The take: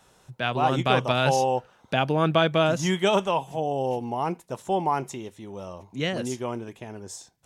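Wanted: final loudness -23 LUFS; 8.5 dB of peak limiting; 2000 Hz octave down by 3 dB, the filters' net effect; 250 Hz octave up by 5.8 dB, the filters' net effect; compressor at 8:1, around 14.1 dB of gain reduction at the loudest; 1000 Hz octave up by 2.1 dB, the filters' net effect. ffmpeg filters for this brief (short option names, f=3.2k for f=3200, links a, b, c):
-af "equalizer=f=250:t=o:g=8,equalizer=f=1k:t=o:g=3.5,equalizer=f=2k:t=o:g=-6,acompressor=threshold=-29dB:ratio=8,volume=13dB,alimiter=limit=-12dB:level=0:latency=1"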